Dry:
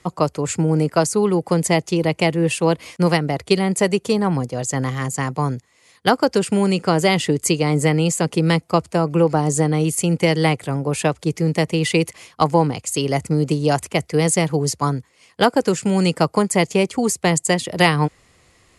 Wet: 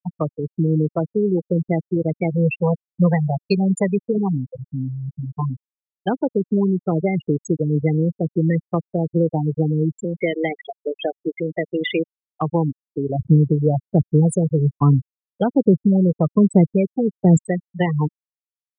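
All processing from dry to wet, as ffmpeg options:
ffmpeg -i in.wav -filter_complex "[0:a]asettb=1/sr,asplit=3[link_01][link_02][link_03];[link_01]atrim=end=2.314[link_04];[link_02]atrim=start=2.31:end=4.18,asetpts=PTS-STARTPTS,afade=type=in:duration=0.004:curve=qsin,afade=type=out:start_time=1.866:duration=0.004:curve=qsin,equalizer=frequency=310:width=2.4:gain=-13,bandreject=frequency=109.2:width_type=h:width=4,bandreject=frequency=218.4:width_type=h:width=4,bandreject=frequency=327.6:width_type=h:width=4,bandreject=frequency=436.8:width_type=h:width=4,bandreject=frequency=546:width_type=h:width=4,bandreject=frequency=655.2:width_type=h:width=4,bandreject=frequency=764.4:width_type=h:width=4,bandreject=frequency=873.6:width_type=h:width=4,acontrast=37[link_05];[link_03]atrim=start=4.176[link_06];[link_04][link_05]acrossfade=duration=0.004:curve1=hsin:curve2=qsin[link_07];[link_07][link_06]acrossfade=duration=0.004:curve1=qsin:curve2=hsin,asettb=1/sr,asplit=3[link_08][link_09][link_10];[link_08]atrim=end=10.044[link_11];[link_09]atrim=start=10.04:end=12.05,asetpts=PTS-STARTPTS,afade=type=in:duration=0.004:curve=qsin,afade=type=out:start_time=2.006:duration=0.004:curve=qsin,aeval=exprs='val(0)+0.5*0.1*sgn(val(0))':channel_layout=same,highpass=280,equalizer=frequency=690:width_type=q:width=4:gain=5,equalizer=frequency=1000:width_type=q:width=4:gain=-10,equalizer=frequency=2000:width_type=q:width=4:gain=5,equalizer=frequency=3400:width_type=q:width=4:gain=9,lowpass=frequency=9400:width=0.5412,lowpass=frequency=9400:width=1.3066[link_12];[link_10]atrim=start=12.046[link_13];[link_11][link_12]acrossfade=duration=0.004:curve1=hsin:curve2=qsin[link_14];[link_14][link_13]acrossfade=duration=0.004:curve1=qsin:curve2=hsin,asettb=1/sr,asplit=3[link_15][link_16][link_17];[link_15]atrim=end=13.194[link_18];[link_16]atrim=start=13.19:end=17.37,asetpts=PTS-STARTPTS,afade=type=in:duration=0.004:curve=qsin,afade=type=out:start_time=4.176:duration=0.004:curve=qsin,lowshelf=frequency=190:gain=8,aphaser=in_gain=1:out_gain=1:delay=2.2:decay=0.38:speed=1.2:type=sinusoidal[link_19];[link_17]atrim=start=17.366[link_20];[link_18][link_19]acrossfade=duration=0.004:curve1=hsin:curve2=qsin[link_21];[link_21][link_20]acrossfade=duration=0.004:curve1=qsin:curve2=hsin,afftfilt=real='re*gte(hypot(re,im),0.501)':imag='im*gte(hypot(re,im),0.501)':win_size=1024:overlap=0.75,acrossover=split=400[link_22][link_23];[link_23]acompressor=threshold=-26dB:ratio=3[link_24];[link_22][link_24]amix=inputs=2:normalize=0" out.wav

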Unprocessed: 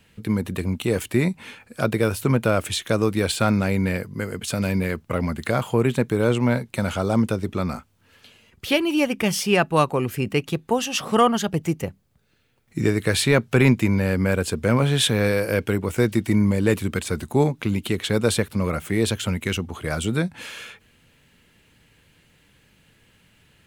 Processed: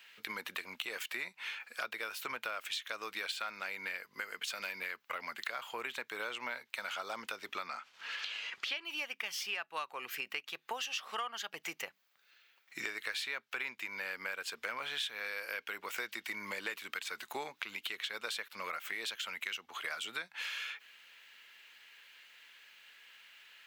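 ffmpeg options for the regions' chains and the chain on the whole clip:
ffmpeg -i in.wav -filter_complex "[0:a]asettb=1/sr,asplit=3[link_01][link_02][link_03];[link_01]atrim=end=7.674[link_04];[link_02]atrim=start=7.67:end=8.85,asetpts=PTS-STARTPTS,afade=type=in:duration=0.004:curve=qsin,afade=type=out:start_time=1.176:duration=0.004:curve=qsin,lowpass=6900,agate=range=-33dB:threshold=-57dB:ratio=3:release=100:detection=peak,acompressor=mode=upward:threshold=-26dB:ratio=2.5:attack=3.2:release=140:knee=2.83:detection=peak[link_05];[link_03]atrim=start=8.846[link_06];[link_04][link_05]acrossfade=duration=0.004:curve1=hsin:curve2=qsin[link_07];[link_07][link_06]acrossfade=duration=0.004:curve1=qsin:curve2=hsin,highpass=1500,equalizer=frequency=9500:width_type=o:width=1:gain=-15,acompressor=threshold=-43dB:ratio=6,volume=6dB" out.wav

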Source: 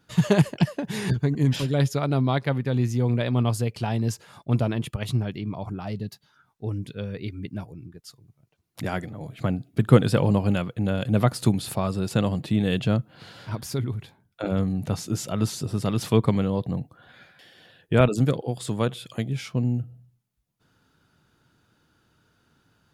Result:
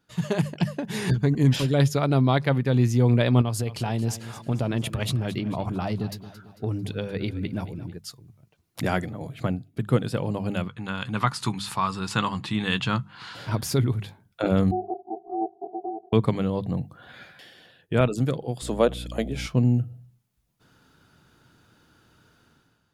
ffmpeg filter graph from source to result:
ffmpeg -i in.wav -filter_complex "[0:a]asettb=1/sr,asplit=3[link_01][link_02][link_03];[link_01]atrim=end=3.414[link_04];[link_02]atrim=start=3.41:end=7.95,asetpts=PTS-STARTPTS,afade=type=in:duration=0.004:curve=qsin,afade=type=out:start_time=4.536:duration=0.004:curve=qsin,acompressor=threshold=-27dB:ratio=6:attack=3.2:release=140:knee=1:detection=peak,aecho=1:1:223|446|669|892:0.178|0.0854|0.041|0.0197,atrim=end_sample=200214[link_05];[link_03]atrim=start=7.946[link_06];[link_04][link_05]acrossfade=duration=0.004:curve1=hsin:curve2=qsin[link_07];[link_07][link_06]acrossfade=duration=0.004:curve1=qsin:curve2=hsin,asettb=1/sr,asplit=3[link_08][link_09][link_10];[link_08]atrim=end=10.684[link_11];[link_09]atrim=start=10.68:end=13.35,asetpts=PTS-STARTPTS,afade=type=in:duration=0.004:curve=qsin,afade=type=out:start_time=2.666:duration=0.004:curve=qsin,lowpass=7900,lowshelf=frequency=780:width_type=q:width=3:gain=-8,asplit=2[link_12][link_13];[link_13]adelay=15,volume=-13.5dB[link_14];[link_12][link_14]amix=inputs=2:normalize=0,atrim=end_sample=117747[link_15];[link_10]atrim=start=13.346[link_16];[link_11][link_15]acrossfade=duration=0.004:curve1=hsin:curve2=qsin[link_17];[link_17][link_16]acrossfade=duration=0.004:curve1=qsin:curve2=hsin,asettb=1/sr,asplit=3[link_18][link_19][link_20];[link_18]atrim=end=14.714[link_21];[link_19]atrim=start=14.71:end=16.13,asetpts=PTS-STARTPTS,afade=type=in:duration=0.004:curve=qsin,afade=type=out:start_time=1.416:duration=0.004:curve=qsin,asuperpass=centerf=180:order=4:qfactor=2.6,aeval=exprs='val(0)*sin(2*PI*550*n/s)':channel_layout=same[link_22];[link_20]atrim=start=16.126[link_23];[link_21][link_22]acrossfade=duration=0.004:curve1=hsin:curve2=qsin[link_24];[link_24][link_23]acrossfade=duration=0.004:curve1=qsin:curve2=hsin,asettb=1/sr,asplit=3[link_25][link_26][link_27];[link_25]atrim=end=18.624[link_28];[link_26]atrim=start=18.62:end=19.47,asetpts=PTS-STARTPTS,afade=type=in:duration=0.004:curve=qsin,afade=type=out:start_time=0.846:duration=0.004:curve=qsin,highpass=frequency=180:width=0.5412,highpass=frequency=180:width=1.3066,equalizer=frequency=590:width=1.6:gain=9,aeval=exprs='val(0)+0.0178*(sin(2*PI*60*n/s)+sin(2*PI*2*60*n/s)/2+sin(2*PI*3*60*n/s)/3+sin(2*PI*4*60*n/s)/4+sin(2*PI*5*60*n/s)/5)':channel_layout=same[link_29];[link_27]atrim=start=19.466[link_30];[link_28][link_29]acrossfade=duration=0.004:curve1=hsin:curve2=qsin[link_31];[link_31][link_30]acrossfade=duration=0.004:curve1=qsin:curve2=hsin,bandreject=frequency=50:width_type=h:width=6,bandreject=frequency=100:width_type=h:width=6,bandreject=frequency=150:width_type=h:width=6,bandreject=frequency=200:width_type=h:width=6,dynaudnorm=framelen=110:gausssize=9:maxgain=12.5dB,volume=-6.5dB" out.wav

